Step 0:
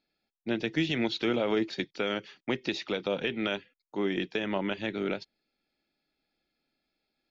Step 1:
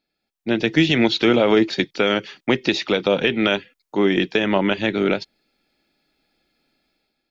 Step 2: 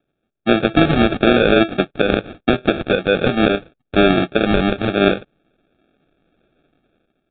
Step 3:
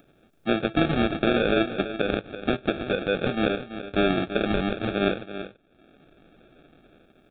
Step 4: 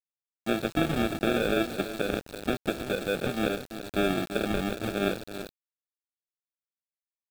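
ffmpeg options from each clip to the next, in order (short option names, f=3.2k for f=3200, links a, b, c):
-af "dynaudnorm=f=130:g=7:m=10dB,volume=2dB"
-af "alimiter=limit=-10.5dB:level=0:latency=1:release=358,aresample=8000,acrusher=samples=8:mix=1:aa=0.000001,aresample=44100,volume=7.5dB"
-af "acompressor=mode=upward:threshold=-31dB:ratio=2.5,aecho=1:1:334:0.266,volume=-9dB"
-af "acrusher=bits=5:mix=0:aa=0.000001,volume=-4dB"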